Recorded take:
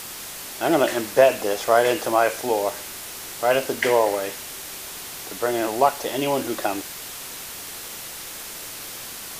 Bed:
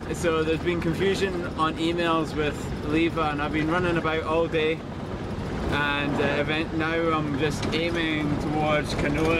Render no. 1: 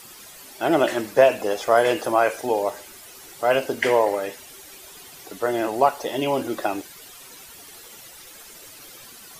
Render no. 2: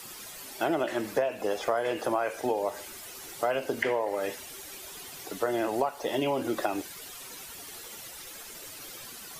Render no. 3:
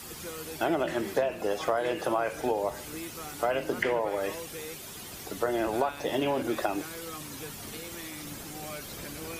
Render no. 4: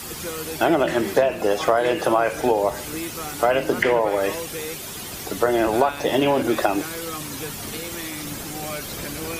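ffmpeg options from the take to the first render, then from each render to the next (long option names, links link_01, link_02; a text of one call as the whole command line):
ffmpeg -i in.wav -af "afftdn=noise_reduction=12:noise_floor=-36" out.wav
ffmpeg -i in.wav -filter_complex "[0:a]acrossover=split=120|3400[link_01][link_02][link_03];[link_03]alimiter=level_in=8.5dB:limit=-24dB:level=0:latency=1:release=394,volume=-8.5dB[link_04];[link_01][link_02][link_04]amix=inputs=3:normalize=0,acompressor=threshold=-24dB:ratio=10" out.wav
ffmpeg -i in.wav -i bed.wav -filter_complex "[1:a]volume=-18dB[link_01];[0:a][link_01]amix=inputs=2:normalize=0" out.wav
ffmpeg -i in.wav -af "volume=9dB,alimiter=limit=-3dB:level=0:latency=1" out.wav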